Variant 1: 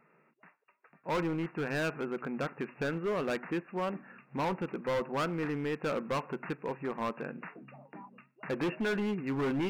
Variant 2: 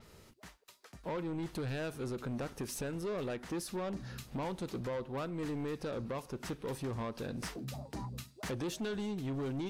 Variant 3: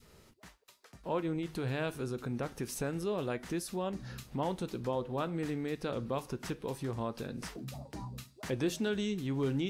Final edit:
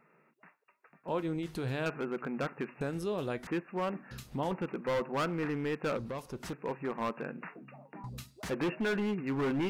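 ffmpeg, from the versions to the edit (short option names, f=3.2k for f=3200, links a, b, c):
-filter_complex "[2:a]asplit=3[a][b][c];[1:a]asplit=2[d][e];[0:a]asplit=6[f][g][h][i][j][k];[f]atrim=end=1.082[l];[a]atrim=start=1.078:end=1.862[m];[g]atrim=start=1.858:end=2.812[n];[b]atrim=start=2.808:end=3.472[o];[h]atrim=start=3.468:end=4.112[p];[c]atrim=start=4.108:end=4.512[q];[i]atrim=start=4.508:end=5.972[r];[d]atrim=start=5.968:end=6.532[s];[j]atrim=start=6.528:end=8.042[t];[e]atrim=start=8.038:end=8.512[u];[k]atrim=start=8.508[v];[l][m]acrossfade=d=0.004:c1=hsin:c2=hsin[w];[w][n]acrossfade=d=0.004:c1=hsin:c2=hsin[x];[x][o]acrossfade=d=0.004:c1=hsin:c2=hsin[y];[y][p]acrossfade=d=0.004:c1=hsin:c2=hsin[z];[z][q]acrossfade=d=0.004:c1=hsin:c2=hsin[aa];[aa][r]acrossfade=d=0.004:c1=hsin:c2=hsin[ab];[ab][s]acrossfade=d=0.004:c1=hsin:c2=hsin[ac];[ac][t]acrossfade=d=0.004:c1=hsin:c2=hsin[ad];[ad][u]acrossfade=d=0.004:c1=hsin:c2=hsin[ae];[ae][v]acrossfade=d=0.004:c1=hsin:c2=hsin"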